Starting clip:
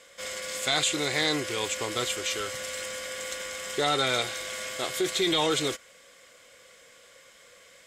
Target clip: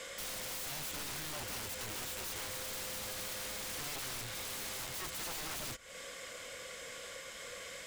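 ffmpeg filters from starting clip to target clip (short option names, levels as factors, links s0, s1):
-filter_complex "[0:a]acrossover=split=150[s0][s1];[s1]acompressor=threshold=0.01:ratio=4[s2];[s0][s2]amix=inputs=2:normalize=0,aeval=exprs='(mod(79.4*val(0)+1,2)-1)/79.4':c=same,lowshelf=f=80:g=6,alimiter=level_in=8.91:limit=0.0631:level=0:latency=1:release=233,volume=0.112,volume=2.37"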